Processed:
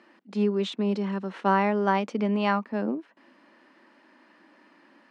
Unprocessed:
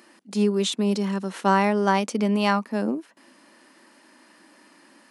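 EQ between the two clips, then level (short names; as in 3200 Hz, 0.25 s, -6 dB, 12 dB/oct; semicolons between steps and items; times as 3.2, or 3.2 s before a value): HPF 140 Hz; LPF 2900 Hz 12 dB/oct; -2.5 dB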